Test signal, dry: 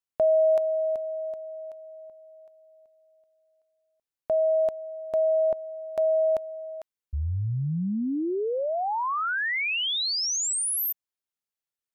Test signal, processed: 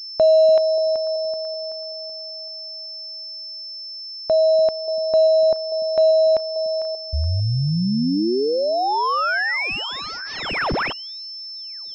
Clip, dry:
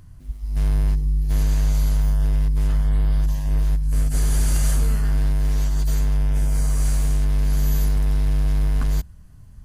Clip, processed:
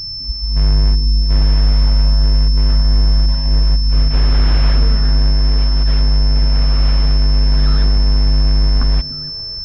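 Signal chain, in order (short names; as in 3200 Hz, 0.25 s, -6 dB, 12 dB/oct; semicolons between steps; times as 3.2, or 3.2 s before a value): delay with a stepping band-pass 0.291 s, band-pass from 200 Hz, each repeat 1.4 oct, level -8 dB; pulse-width modulation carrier 5300 Hz; gain +7 dB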